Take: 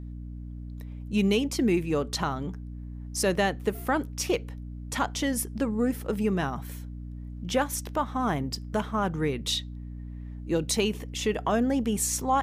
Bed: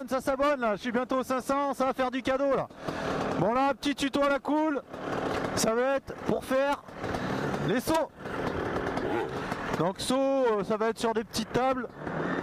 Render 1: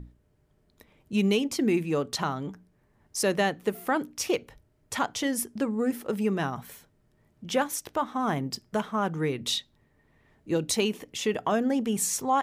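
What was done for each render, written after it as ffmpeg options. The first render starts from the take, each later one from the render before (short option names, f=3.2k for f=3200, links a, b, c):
-af "bandreject=f=60:t=h:w=6,bandreject=f=120:t=h:w=6,bandreject=f=180:t=h:w=6,bandreject=f=240:t=h:w=6,bandreject=f=300:t=h:w=6"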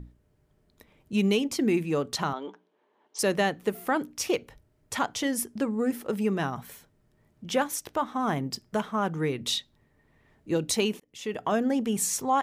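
-filter_complex "[0:a]asettb=1/sr,asplit=3[a][b][c];[a]atrim=end=2.334[d];[b]atrim=start=2.33:end=3.19,asetpts=PTS-STARTPTS,afade=t=in:d=0.004:c=qsin,afade=t=out:st=0.856:d=0.004:c=qsin,highpass=f=300:w=0.5412,highpass=f=300:w=1.3066,equalizer=f=450:t=q:w=4:g=4,equalizer=f=930:t=q:w=4:g=7,equalizer=f=1.9k:t=q:w=4:g=-4,equalizer=f=3.2k:t=q:w=4:g=7,equalizer=f=5.1k:t=q:w=4:g=-8,lowpass=f=5.5k:w=0.5412,lowpass=f=5.5k:w=1.3066[e];[c]atrim=start=3.186[f];[d][e]acrossfade=d=0.004:c1=hsin:c2=qsin[g];[g][f]acrossfade=d=0.004:c1=qsin:c2=hsin,asplit=2[h][i];[h]atrim=end=11,asetpts=PTS-STARTPTS,afade=t=out:st=10.996:d=0.004:c=hsin[j];[i]atrim=start=11,asetpts=PTS-STARTPTS,afade=t=in:d=0.55[k];[j][k]concat=n=2:v=0:a=1"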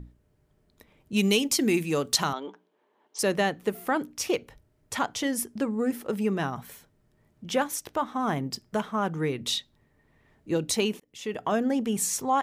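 -filter_complex "[0:a]asettb=1/sr,asplit=3[a][b][c];[a]atrim=end=1.164[d];[b]atrim=start=1.16:end=2.4,asetpts=PTS-STARTPTS,afade=t=in:d=0.004:c=qsin,afade=t=out:st=1.236:d=0.004:c=qsin,highshelf=f=3.1k:g=12[e];[c]atrim=start=2.396[f];[d][e]acrossfade=d=0.004:c1=hsin:c2=qsin[g];[g][f]acrossfade=d=0.004:c1=qsin:c2=hsin"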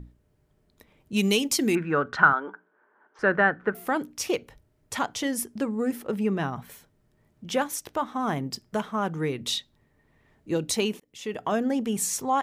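-filter_complex "[0:a]asettb=1/sr,asplit=3[a][b][c];[a]atrim=end=1.754[d];[b]atrim=start=1.75:end=3.75,asetpts=PTS-STARTPTS,afade=t=in:d=0.004:c=qsin,afade=t=out:st=1.996:d=0.004:c=qsin,lowpass=f=1.5k:t=q:w=9.9[e];[c]atrim=start=3.746[f];[d][e]acrossfade=d=0.004:c1=hsin:c2=qsin[g];[g][f]acrossfade=d=0.004:c1=qsin:c2=hsin,asettb=1/sr,asplit=3[h][i][j];[h]atrim=end=6.024[k];[i]atrim=start=6.02:end=6.7,asetpts=PTS-STARTPTS,afade=t=in:d=0.004:c=qsin,afade=t=out:st=0.676:d=0.004:c=qsin,bass=f=250:g=2,treble=f=4k:g=-6[l];[j]atrim=start=6.696[m];[k][l]acrossfade=d=0.004:c1=hsin:c2=qsin[n];[n][m]acrossfade=d=0.004:c1=qsin:c2=hsin"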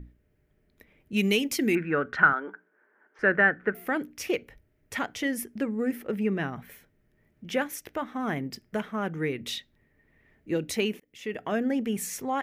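-af "equalizer=f=125:t=o:w=1:g=-4,equalizer=f=1k:t=o:w=1:g=-9,equalizer=f=2k:t=o:w=1:g=7,equalizer=f=4k:t=o:w=1:g=-6,equalizer=f=8k:t=o:w=1:g=-8"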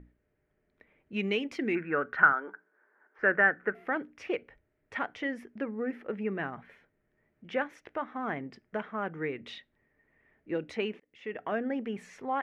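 -af "lowpass=2k,lowshelf=f=300:g=-11.5"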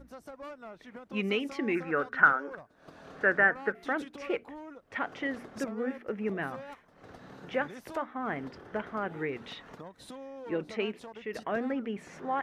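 -filter_complex "[1:a]volume=-18.5dB[a];[0:a][a]amix=inputs=2:normalize=0"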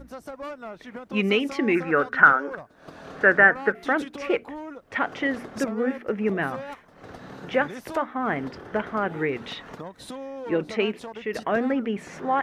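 -af "volume=8dB,alimiter=limit=-2dB:level=0:latency=1"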